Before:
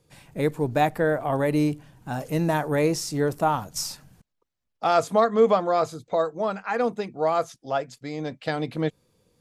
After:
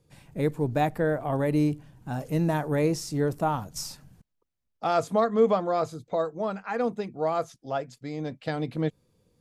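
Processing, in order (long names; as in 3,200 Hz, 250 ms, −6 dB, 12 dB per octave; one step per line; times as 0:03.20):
low-shelf EQ 380 Hz +6.5 dB
level −5.5 dB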